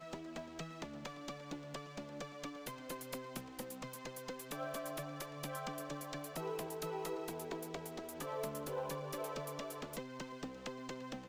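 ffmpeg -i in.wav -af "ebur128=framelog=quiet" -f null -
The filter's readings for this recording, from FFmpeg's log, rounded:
Integrated loudness:
  I:         -44.6 LUFS
  Threshold: -54.6 LUFS
Loudness range:
  LRA:         4.0 LU
  Threshold: -64.2 LUFS
  LRA low:   -46.8 LUFS
  LRA high:  -42.8 LUFS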